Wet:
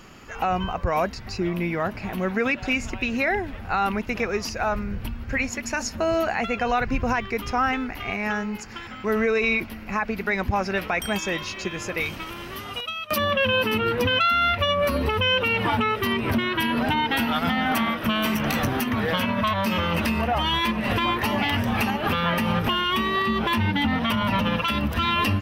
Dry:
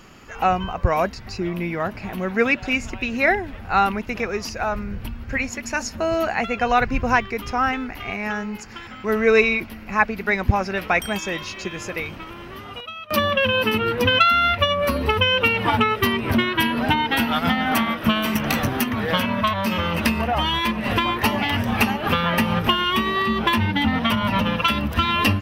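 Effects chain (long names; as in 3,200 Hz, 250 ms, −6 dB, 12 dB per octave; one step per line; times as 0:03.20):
0:12.00–0:13.18: parametric band 11,000 Hz +11 dB 2.6 octaves
brickwall limiter −14 dBFS, peak gain reduction 10.5 dB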